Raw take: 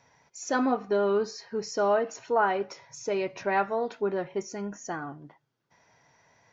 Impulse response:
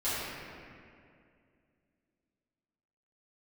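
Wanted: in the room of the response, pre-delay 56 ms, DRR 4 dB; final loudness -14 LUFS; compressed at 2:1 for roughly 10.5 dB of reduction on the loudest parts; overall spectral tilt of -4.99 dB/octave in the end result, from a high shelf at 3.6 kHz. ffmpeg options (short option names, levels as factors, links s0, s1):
-filter_complex "[0:a]highshelf=f=3600:g=-9,acompressor=threshold=0.00891:ratio=2,asplit=2[s0][s1];[1:a]atrim=start_sample=2205,adelay=56[s2];[s1][s2]afir=irnorm=-1:irlink=0,volume=0.224[s3];[s0][s3]amix=inputs=2:normalize=0,volume=14.1"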